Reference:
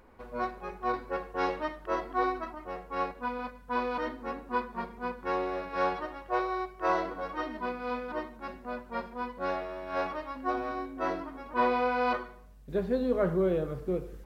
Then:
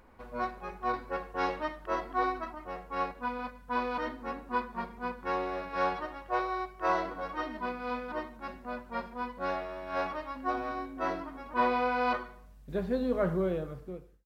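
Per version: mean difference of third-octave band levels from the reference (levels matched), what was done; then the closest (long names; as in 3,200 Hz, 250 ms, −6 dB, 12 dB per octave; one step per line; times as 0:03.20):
1.5 dB: fade-out on the ending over 0.88 s
parametric band 410 Hz −4 dB 0.72 octaves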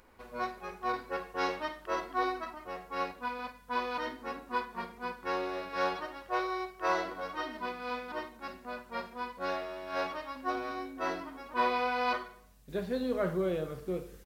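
4.0 dB: high-shelf EQ 2,000 Hz +11.5 dB
on a send: ambience of single reflections 11 ms −17 dB, 51 ms −13 dB
on the sum: level −5 dB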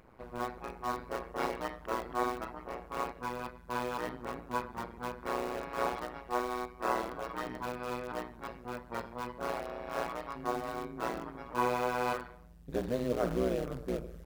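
6.0 dB: in parallel at −11 dB: wrap-around overflow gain 30.5 dB
on the sum: amplitude modulation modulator 120 Hz, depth 100%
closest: first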